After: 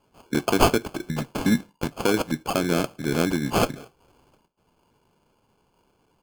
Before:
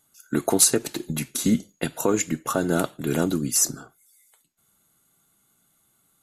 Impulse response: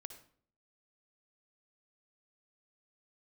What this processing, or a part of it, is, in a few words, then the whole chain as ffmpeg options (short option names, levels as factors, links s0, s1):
crushed at another speed: -af "asetrate=35280,aresample=44100,acrusher=samples=29:mix=1:aa=0.000001,asetrate=55125,aresample=44100"